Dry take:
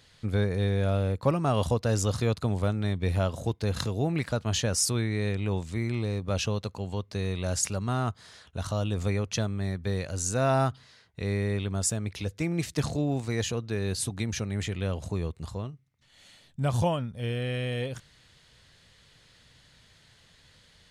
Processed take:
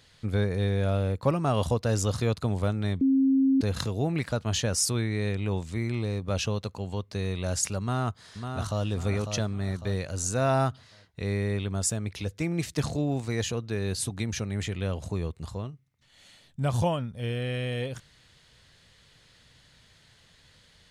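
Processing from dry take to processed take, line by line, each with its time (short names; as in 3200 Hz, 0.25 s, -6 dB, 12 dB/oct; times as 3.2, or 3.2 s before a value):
3.01–3.61 bleep 268 Hz -18.5 dBFS
7.8–8.85 echo throw 0.55 s, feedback 40%, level -6.5 dB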